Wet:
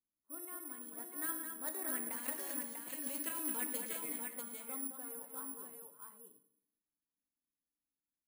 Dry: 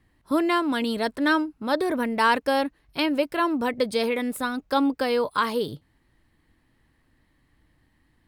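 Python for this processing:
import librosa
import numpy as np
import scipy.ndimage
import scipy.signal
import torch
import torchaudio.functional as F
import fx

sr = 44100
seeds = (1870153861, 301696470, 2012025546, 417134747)

y = fx.doppler_pass(x, sr, speed_mps=12, closest_m=2.7, pass_at_s=2.75)
y = fx.low_shelf_res(y, sr, hz=170.0, db=-14.0, q=1.5)
y = fx.env_lowpass(y, sr, base_hz=710.0, full_db=-23.5)
y = fx.tone_stack(y, sr, knobs='5-5-5')
y = fx.over_compress(y, sr, threshold_db=-50.0, ratio=-1.0)
y = fx.echo_multitap(y, sr, ms=(111, 215, 567, 643), db=(-13.0, -7.0, -19.5, -4.5))
y = fx.rev_fdn(y, sr, rt60_s=0.72, lf_ratio=1.3, hf_ratio=0.95, size_ms=32.0, drr_db=7.0)
y = (np.kron(y[::4], np.eye(4)[0]) * 4)[:len(y)]
y = y * 10.0 ** (2.0 / 20.0)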